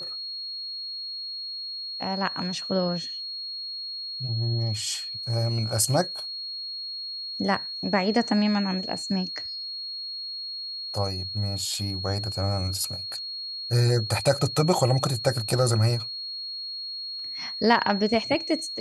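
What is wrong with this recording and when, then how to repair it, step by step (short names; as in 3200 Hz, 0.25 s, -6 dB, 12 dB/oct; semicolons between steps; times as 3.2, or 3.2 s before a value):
tone 4300 Hz -32 dBFS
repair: notch 4300 Hz, Q 30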